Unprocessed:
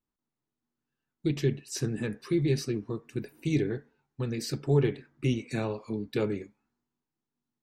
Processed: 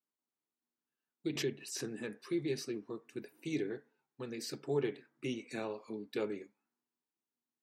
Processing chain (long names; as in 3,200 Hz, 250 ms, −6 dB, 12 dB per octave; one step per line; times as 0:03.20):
high-pass filter 270 Hz 12 dB per octave
0:01.28–0:02.00: background raised ahead of every attack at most 91 dB per second
level −6 dB